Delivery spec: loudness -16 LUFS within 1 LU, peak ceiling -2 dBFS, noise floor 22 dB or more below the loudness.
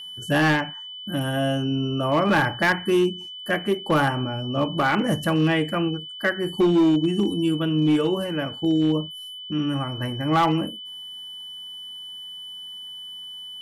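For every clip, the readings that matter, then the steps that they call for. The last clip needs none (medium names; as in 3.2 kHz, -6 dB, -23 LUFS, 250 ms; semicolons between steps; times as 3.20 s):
clipped samples 1.4%; clipping level -14.0 dBFS; steady tone 3 kHz; tone level -35 dBFS; loudness -23.0 LUFS; peak level -14.0 dBFS; loudness target -16.0 LUFS
-> clip repair -14 dBFS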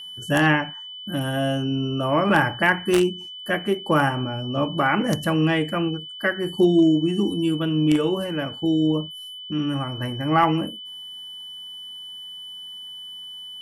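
clipped samples 0.0%; steady tone 3 kHz; tone level -35 dBFS
-> band-stop 3 kHz, Q 30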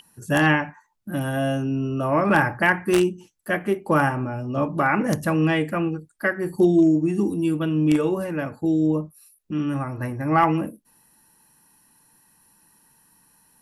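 steady tone not found; loudness -22.5 LUFS; peak level -5.0 dBFS; loudness target -16.0 LUFS
-> trim +6.5 dB; peak limiter -2 dBFS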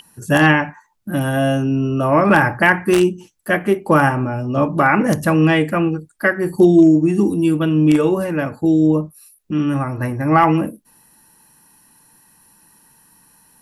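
loudness -16.0 LUFS; peak level -2.0 dBFS; noise floor -56 dBFS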